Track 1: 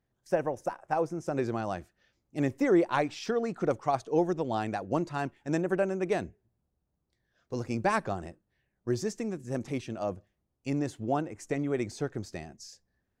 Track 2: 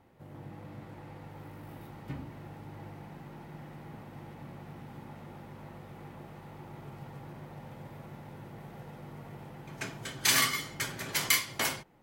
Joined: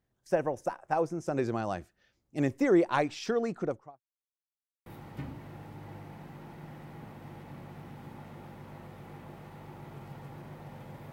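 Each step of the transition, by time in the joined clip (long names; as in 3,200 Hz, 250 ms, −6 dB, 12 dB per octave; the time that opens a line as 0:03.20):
track 1
0:03.44–0:04.01: fade out and dull
0:04.01–0:04.86: silence
0:04.86: continue with track 2 from 0:01.77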